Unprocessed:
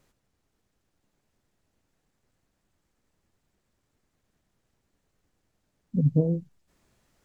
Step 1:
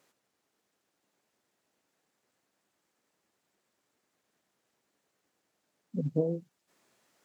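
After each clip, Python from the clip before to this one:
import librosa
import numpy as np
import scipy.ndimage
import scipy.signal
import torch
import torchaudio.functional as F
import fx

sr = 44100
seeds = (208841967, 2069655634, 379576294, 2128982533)

y = scipy.signal.sosfilt(scipy.signal.bessel(2, 360.0, 'highpass', norm='mag', fs=sr, output='sos'), x)
y = y * 10.0 ** (1.0 / 20.0)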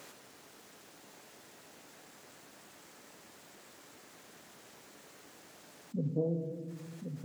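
y = x + 10.0 ** (-15.0 / 20.0) * np.pad(x, (int(1076 * sr / 1000.0), 0))[:len(x)]
y = fx.room_shoebox(y, sr, seeds[0], volume_m3=400.0, walls='mixed', distance_m=0.32)
y = fx.env_flatten(y, sr, amount_pct=50)
y = y * 10.0 ** (-5.5 / 20.0)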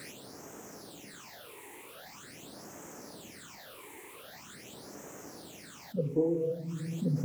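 y = fx.phaser_stages(x, sr, stages=8, low_hz=180.0, high_hz=3900.0, hz=0.44, feedback_pct=45)
y = y + 10.0 ** (-18.5 / 20.0) * np.pad(y, (int(1188 * sr / 1000.0), 0))[:len(y)]
y = y * 10.0 ** (9.5 / 20.0)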